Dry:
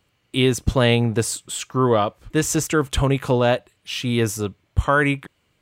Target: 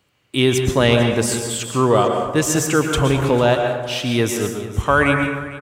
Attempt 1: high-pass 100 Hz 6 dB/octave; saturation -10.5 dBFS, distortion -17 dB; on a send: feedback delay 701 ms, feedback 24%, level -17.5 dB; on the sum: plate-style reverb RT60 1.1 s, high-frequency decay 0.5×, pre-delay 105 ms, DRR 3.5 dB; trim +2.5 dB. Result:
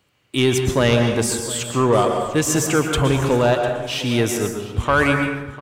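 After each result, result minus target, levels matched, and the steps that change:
echo 252 ms late; saturation: distortion +13 dB
change: feedback delay 449 ms, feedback 24%, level -17.5 dB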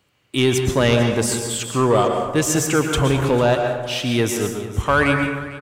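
saturation: distortion +13 dB
change: saturation -2 dBFS, distortion -30 dB

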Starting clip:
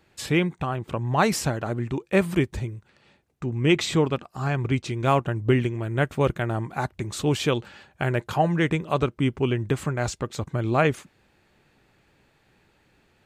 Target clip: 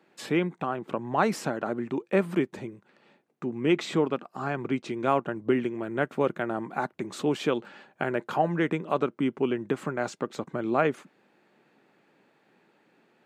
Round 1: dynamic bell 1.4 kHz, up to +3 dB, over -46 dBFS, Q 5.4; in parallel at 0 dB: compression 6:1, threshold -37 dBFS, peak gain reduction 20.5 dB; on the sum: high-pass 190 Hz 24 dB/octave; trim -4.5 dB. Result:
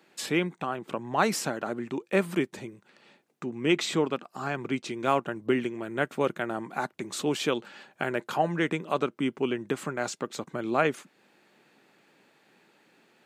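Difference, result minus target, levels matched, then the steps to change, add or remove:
compression: peak gain reduction +9 dB; 4 kHz band +5.5 dB
change: compression 6:1, threshold -26 dBFS, peak gain reduction 11.5 dB; add after high-pass: treble shelf 2.8 kHz -11.5 dB

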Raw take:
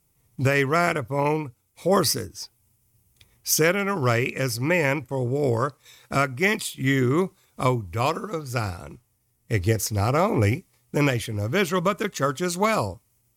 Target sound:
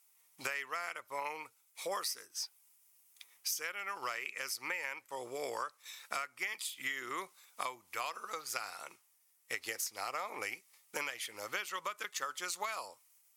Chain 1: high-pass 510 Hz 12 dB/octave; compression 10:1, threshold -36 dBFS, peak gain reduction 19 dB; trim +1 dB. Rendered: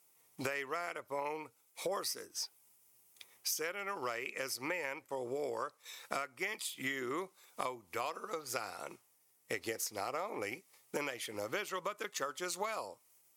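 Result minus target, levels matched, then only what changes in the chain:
500 Hz band +5.5 dB
change: high-pass 1.1 kHz 12 dB/octave

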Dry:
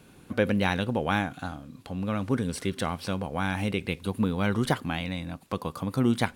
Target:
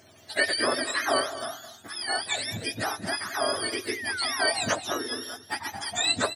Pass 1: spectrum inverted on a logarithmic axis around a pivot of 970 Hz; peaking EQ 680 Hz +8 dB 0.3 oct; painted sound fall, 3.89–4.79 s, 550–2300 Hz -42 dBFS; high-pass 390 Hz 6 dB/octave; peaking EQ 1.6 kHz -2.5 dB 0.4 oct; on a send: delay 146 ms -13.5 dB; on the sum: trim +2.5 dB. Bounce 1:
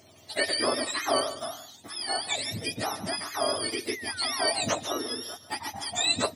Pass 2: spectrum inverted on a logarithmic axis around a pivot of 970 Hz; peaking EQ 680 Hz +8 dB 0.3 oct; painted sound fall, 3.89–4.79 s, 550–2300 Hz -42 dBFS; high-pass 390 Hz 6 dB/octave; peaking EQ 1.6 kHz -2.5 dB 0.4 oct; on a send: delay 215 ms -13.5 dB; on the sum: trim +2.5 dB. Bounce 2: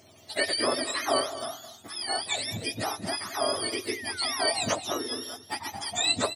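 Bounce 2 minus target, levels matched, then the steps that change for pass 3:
2 kHz band -4.0 dB
change: second peaking EQ 1.6 kHz +7.5 dB 0.4 oct

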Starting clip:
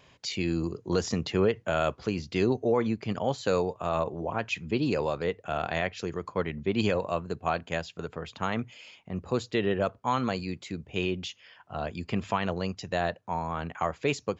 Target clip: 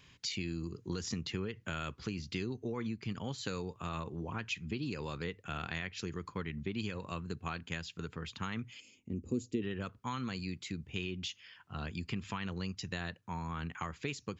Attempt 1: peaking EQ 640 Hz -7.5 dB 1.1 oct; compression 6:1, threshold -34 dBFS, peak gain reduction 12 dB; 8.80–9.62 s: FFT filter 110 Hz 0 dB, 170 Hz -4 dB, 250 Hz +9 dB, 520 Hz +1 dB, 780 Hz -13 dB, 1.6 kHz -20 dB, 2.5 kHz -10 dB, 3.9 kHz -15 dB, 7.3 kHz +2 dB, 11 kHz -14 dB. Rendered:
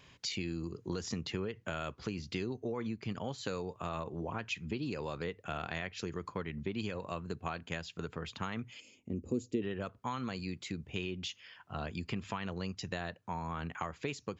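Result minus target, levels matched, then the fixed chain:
500 Hz band +3.0 dB
peaking EQ 640 Hz -17.5 dB 1.1 oct; compression 6:1, threshold -34 dBFS, peak gain reduction 10 dB; 8.80–9.62 s: FFT filter 110 Hz 0 dB, 170 Hz -4 dB, 250 Hz +9 dB, 520 Hz +1 dB, 780 Hz -13 dB, 1.6 kHz -20 dB, 2.5 kHz -10 dB, 3.9 kHz -15 dB, 7.3 kHz +2 dB, 11 kHz -14 dB

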